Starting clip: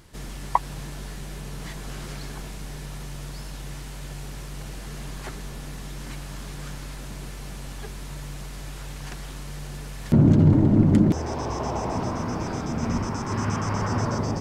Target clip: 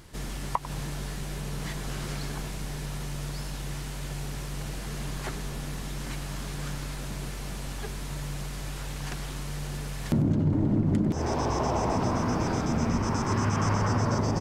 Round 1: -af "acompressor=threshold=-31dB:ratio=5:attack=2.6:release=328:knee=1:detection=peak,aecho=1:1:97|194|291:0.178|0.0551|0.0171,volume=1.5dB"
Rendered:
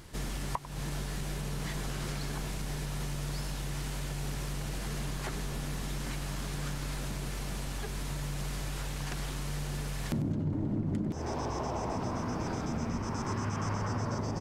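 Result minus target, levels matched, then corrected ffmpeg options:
compressor: peak gain reduction +7.5 dB
-af "acompressor=threshold=-21.5dB:ratio=5:attack=2.6:release=328:knee=1:detection=peak,aecho=1:1:97|194|291:0.178|0.0551|0.0171,volume=1.5dB"

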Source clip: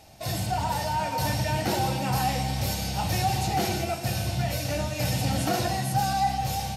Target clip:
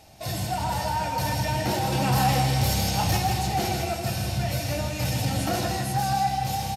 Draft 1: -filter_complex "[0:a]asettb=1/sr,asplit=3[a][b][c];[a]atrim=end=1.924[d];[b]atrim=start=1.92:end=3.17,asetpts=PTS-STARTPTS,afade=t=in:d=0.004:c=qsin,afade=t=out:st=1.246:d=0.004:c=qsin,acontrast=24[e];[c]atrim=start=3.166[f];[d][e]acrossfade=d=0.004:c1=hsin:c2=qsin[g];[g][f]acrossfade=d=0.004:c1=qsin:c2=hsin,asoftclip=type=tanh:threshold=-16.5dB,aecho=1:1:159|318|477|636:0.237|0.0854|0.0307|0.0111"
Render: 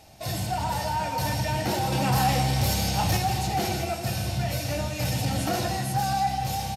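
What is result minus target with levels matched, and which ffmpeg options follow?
echo-to-direct -6 dB
-filter_complex "[0:a]asettb=1/sr,asplit=3[a][b][c];[a]atrim=end=1.924[d];[b]atrim=start=1.92:end=3.17,asetpts=PTS-STARTPTS,afade=t=in:d=0.004:c=qsin,afade=t=out:st=1.246:d=0.004:c=qsin,acontrast=24[e];[c]atrim=start=3.166[f];[d][e]acrossfade=d=0.004:c1=hsin:c2=qsin[g];[g][f]acrossfade=d=0.004:c1=qsin:c2=hsin,asoftclip=type=tanh:threshold=-16.5dB,aecho=1:1:159|318|477|636:0.473|0.17|0.0613|0.0221"

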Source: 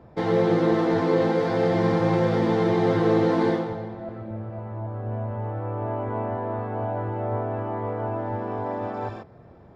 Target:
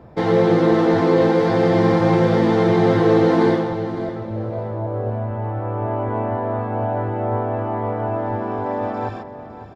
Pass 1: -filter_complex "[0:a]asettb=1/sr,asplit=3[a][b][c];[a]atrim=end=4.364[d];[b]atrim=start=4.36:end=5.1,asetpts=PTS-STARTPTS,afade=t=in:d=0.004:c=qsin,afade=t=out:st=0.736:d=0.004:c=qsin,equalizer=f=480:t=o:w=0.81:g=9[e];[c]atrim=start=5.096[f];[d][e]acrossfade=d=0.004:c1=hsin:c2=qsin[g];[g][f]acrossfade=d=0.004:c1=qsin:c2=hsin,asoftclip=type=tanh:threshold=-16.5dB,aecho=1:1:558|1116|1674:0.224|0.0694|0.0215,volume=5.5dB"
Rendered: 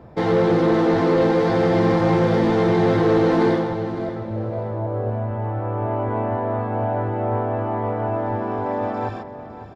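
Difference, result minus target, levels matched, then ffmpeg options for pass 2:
soft clip: distortion +18 dB
-filter_complex "[0:a]asettb=1/sr,asplit=3[a][b][c];[a]atrim=end=4.364[d];[b]atrim=start=4.36:end=5.1,asetpts=PTS-STARTPTS,afade=t=in:d=0.004:c=qsin,afade=t=out:st=0.736:d=0.004:c=qsin,equalizer=f=480:t=o:w=0.81:g=9[e];[c]atrim=start=5.096[f];[d][e]acrossfade=d=0.004:c1=hsin:c2=qsin[g];[g][f]acrossfade=d=0.004:c1=qsin:c2=hsin,asoftclip=type=tanh:threshold=-5.5dB,aecho=1:1:558|1116|1674:0.224|0.0694|0.0215,volume=5.5dB"

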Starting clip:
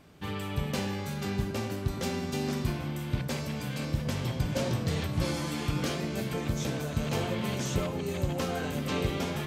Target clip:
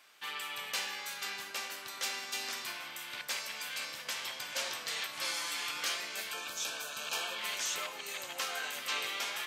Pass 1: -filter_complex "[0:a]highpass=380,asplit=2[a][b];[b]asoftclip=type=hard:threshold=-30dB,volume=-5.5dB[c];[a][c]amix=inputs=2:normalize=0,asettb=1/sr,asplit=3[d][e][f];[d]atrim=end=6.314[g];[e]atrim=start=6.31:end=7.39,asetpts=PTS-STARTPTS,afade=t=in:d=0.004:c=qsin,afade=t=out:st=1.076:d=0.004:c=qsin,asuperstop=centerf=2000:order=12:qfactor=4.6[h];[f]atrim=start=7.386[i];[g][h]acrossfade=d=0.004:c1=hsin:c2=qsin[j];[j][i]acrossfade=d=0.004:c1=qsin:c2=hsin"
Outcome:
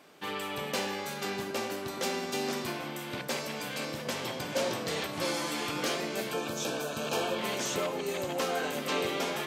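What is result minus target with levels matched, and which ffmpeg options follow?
500 Hz band +12.5 dB
-filter_complex "[0:a]highpass=1.4k,asplit=2[a][b];[b]asoftclip=type=hard:threshold=-30dB,volume=-5.5dB[c];[a][c]amix=inputs=2:normalize=0,asettb=1/sr,asplit=3[d][e][f];[d]atrim=end=6.314[g];[e]atrim=start=6.31:end=7.39,asetpts=PTS-STARTPTS,afade=t=in:d=0.004:c=qsin,afade=t=out:st=1.076:d=0.004:c=qsin,asuperstop=centerf=2000:order=12:qfactor=4.6[h];[f]atrim=start=7.386[i];[g][h]acrossfade=d=0.004:c1=hsin:c2=qsin[j];[j][i]acrossfade=d=0.004:c1=qsin:c2=hsin"

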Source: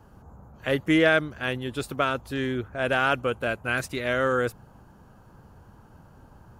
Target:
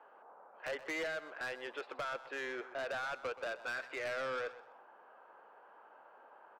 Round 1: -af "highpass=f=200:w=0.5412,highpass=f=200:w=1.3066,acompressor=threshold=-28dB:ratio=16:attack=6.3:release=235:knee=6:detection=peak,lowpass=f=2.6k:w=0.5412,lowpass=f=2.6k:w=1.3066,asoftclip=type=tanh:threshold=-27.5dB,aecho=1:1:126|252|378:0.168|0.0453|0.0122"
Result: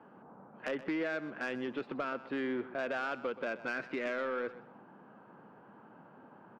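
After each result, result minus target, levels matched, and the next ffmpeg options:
250 Hz band +11.0 dB; soft clip: distortion -7 dB
-af "highpass=f=500:w=0.5412,highpass=f=500:w=1.3066,acompressor=threshold=-28dB:ratio=16:attack=6.3:release=235:knee=6:detection=peak,lowpass=f=2.6k:w=0.5412,lowpass=f=2.6k:w=1.3066,asoftclip=type=tanh:threshold=-27.5dB,aecho=1:1:126|252|378:0.168|0.0453|0.0122"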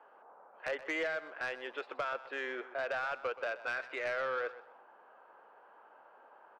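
soft clip: distortion -7 dB
-af "highpass=f=500:w=0.5412,highpass=f=500:w=1.3066,acompressor=threshold=-28dB:ratio=16:attack=6.3:release=235:knee=6:detection=peak,lowpass=f=2.6k:w=0.5412,lowpass=f=2.6k:w=1.3066,asoftclip=type=tanh:threshold=-34.5dB,aecho=1:1:126|252|378:0.168|0.0453|0.0122"

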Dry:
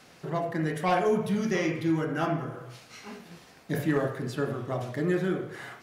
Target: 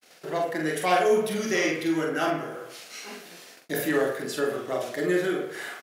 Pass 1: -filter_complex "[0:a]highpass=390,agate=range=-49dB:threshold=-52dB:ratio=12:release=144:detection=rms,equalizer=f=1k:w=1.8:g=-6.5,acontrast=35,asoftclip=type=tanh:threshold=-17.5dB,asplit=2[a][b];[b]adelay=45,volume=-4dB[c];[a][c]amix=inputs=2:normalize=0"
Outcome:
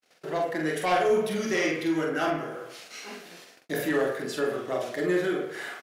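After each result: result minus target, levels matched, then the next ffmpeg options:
soft clip: distortion +16 dB; 8000 Hz band -2.5 dB
-filter_complex "[0:a]highpass=390,agate=range=-49dB:threshold=-52dB:ratio=12:release=144:detection=rms,equalizer=f=1k:w=1.8:g=-6.5,acontrast=35,asoftclip=type=tanh:threshold=-7.5dB,asplit=2[a][b];[b]adelay=45,volume=-4dB[c];[a][c]amix=inputs=2:normalize=0"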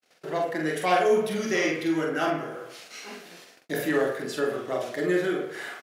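8000 Hz band -3.0 dB
-filter_complex "[0:a]highpass=390,highshelf=f=7.6k:g=7,agate=range=-49dB:threshold=-52dB:ratio=12:release=144:detection=rms,equalizer=f=1k:w=1.8:g=-6.5,acontrast=35,asoftclip=type=tanh:threshold=-7.5dB,asplit=2[a][b];[b]adelay=45,volume=-4dB[c];[a][c]amix=inputs=2:normalize=0"

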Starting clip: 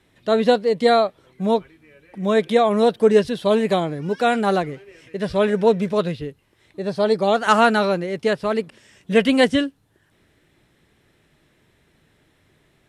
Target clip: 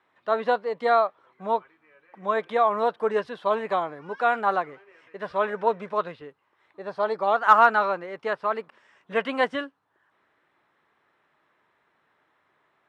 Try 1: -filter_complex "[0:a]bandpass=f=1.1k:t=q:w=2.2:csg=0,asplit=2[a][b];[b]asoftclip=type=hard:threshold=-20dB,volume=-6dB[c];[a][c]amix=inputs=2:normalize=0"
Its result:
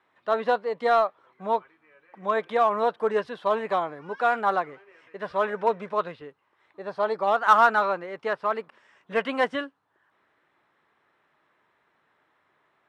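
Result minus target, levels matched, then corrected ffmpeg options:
hard clip: distortion +17 dB
-filter_complex "[0:a]bandpass=f=1.1k:t=q:w=2.2:csg=0,asplit=2[a][b];[b]asoftclip=type=hard:threshold=-10dB,volume=-6dB[c];[a][c]amix=inputs=2:normalize=0"

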